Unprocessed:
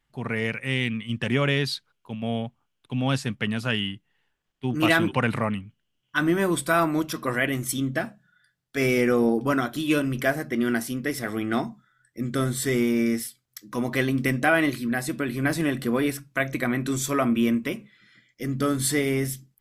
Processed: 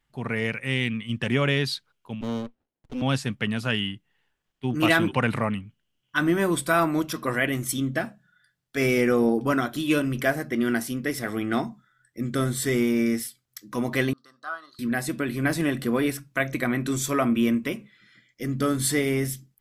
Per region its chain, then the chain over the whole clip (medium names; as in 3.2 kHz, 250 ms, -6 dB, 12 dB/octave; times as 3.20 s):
2.21–3.02 s: Chebyshev band-pass 240–3800 Hz, order 4 + sliding maximum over 33 samples
14.13–14.79 s: two resonant band-passes 2.3 kHz, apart 1.8 oct + upward expansion, over -45 dBFS
whole clip: none